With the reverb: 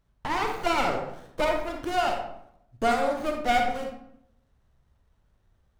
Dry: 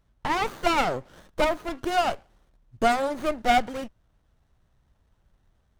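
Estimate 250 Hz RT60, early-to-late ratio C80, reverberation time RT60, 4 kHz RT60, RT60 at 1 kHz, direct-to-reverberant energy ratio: 0.85 s, 7.5 dB, 0.75 s, 0.45 s, 0.70 s, 2.0 dB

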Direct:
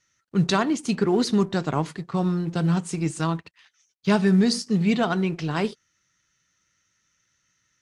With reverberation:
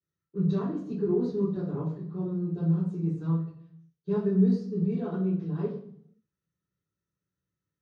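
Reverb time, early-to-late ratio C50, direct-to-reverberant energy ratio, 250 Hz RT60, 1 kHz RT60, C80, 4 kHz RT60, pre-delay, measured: 0.60 s, 3.5 dB, -15.0 dB, 0.90 s, 0.60 s, 7.0 dB, 0.65 s, 3 ms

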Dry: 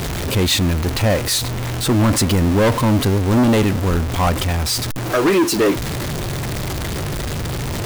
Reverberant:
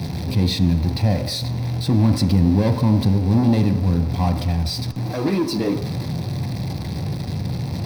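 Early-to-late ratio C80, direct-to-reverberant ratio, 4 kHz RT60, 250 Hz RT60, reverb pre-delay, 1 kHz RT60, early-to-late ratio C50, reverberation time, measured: 11.5 dB, 6.0 dB, 1.1 s, 0.80 s, 3 ms, 1.1 s, 10.0 dB, 1.0 s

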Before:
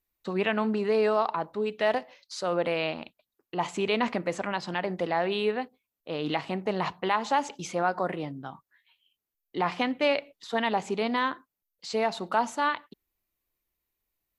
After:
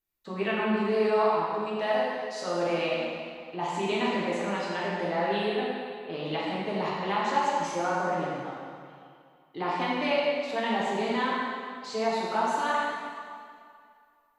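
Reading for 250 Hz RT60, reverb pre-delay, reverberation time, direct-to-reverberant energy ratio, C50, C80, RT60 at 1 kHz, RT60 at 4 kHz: 2.1 s, 4 ms, 2.2 s, -7.0 dB, -2.5 dB, -0.5 dB, 2.3 s, 1.9 s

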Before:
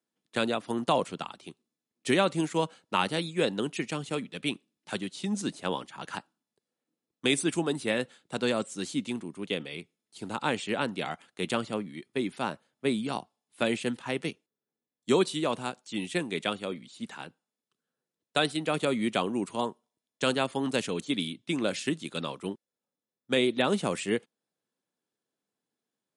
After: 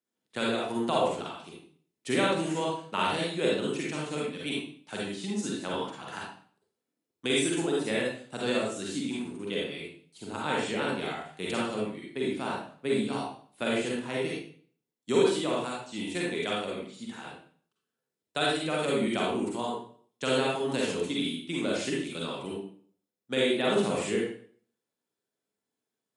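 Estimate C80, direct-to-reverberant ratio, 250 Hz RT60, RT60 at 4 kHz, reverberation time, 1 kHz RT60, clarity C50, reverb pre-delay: 4.5 dB, -4.5 dB, 0.55 s, 0.45 s, 0.50 s, 0.45 s, -1.5 dB, 39 ms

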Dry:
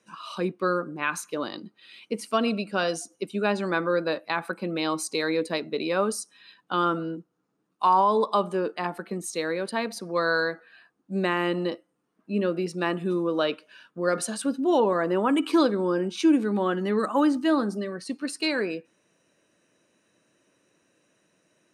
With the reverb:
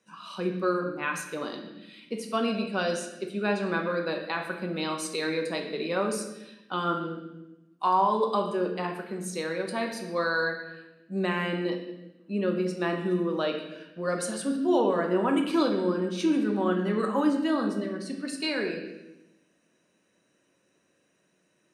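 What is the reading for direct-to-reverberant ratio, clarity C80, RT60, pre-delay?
2.0 dB, 8.5 dB, 0.95 s, 4 ms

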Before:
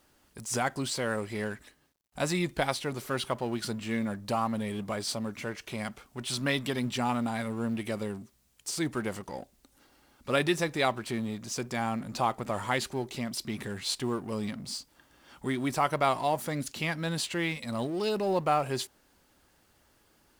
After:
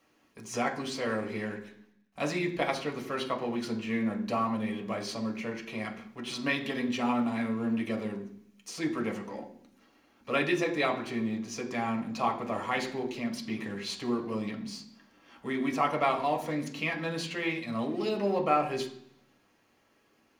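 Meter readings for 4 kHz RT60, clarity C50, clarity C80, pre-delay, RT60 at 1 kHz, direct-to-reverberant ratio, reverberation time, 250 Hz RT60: 0.80 s, 10.5 dB, 13.5 dB, 3 ms, 0.65 s, 0.0 dB, 0.65 s, 0.90 s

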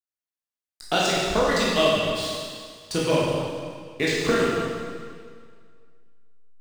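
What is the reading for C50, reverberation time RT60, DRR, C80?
-2.0 dB, 1.9 s, -6.5 dB, 0.0 dB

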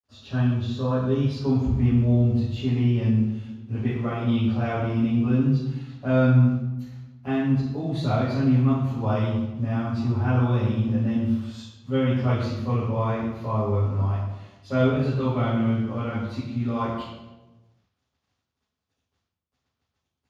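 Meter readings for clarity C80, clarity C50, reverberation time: 4.0 dB, 0.0 dB, 1.1 s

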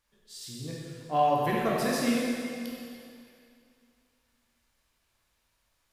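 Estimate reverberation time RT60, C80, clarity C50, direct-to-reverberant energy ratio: 2.4 s, 0.0 dB, -1.5 dB, -5.0 dB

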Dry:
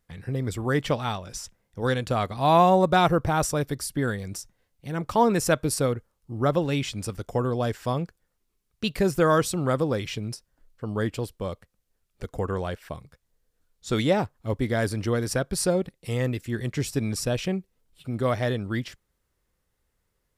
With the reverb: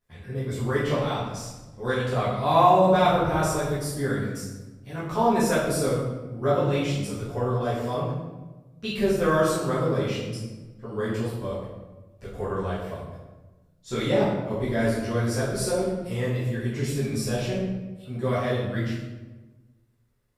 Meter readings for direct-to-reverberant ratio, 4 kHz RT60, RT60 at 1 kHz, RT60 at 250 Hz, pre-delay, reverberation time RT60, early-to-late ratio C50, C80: -11.5 dB, 0.80 s, 1.1 s, 1.5 s, 8 ms, 1.2 s, 1.0 dB, 4.0 dB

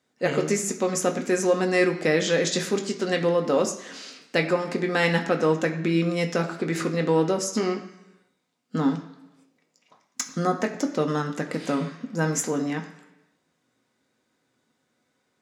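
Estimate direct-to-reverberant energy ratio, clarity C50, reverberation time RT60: 2.5 dB, 10.5 dB, 1.0 s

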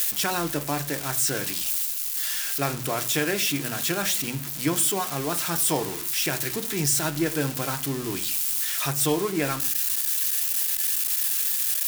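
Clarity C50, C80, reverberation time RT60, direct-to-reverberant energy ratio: 16.5 dB, 21.5 dB, 0.45 s, 7.0 dB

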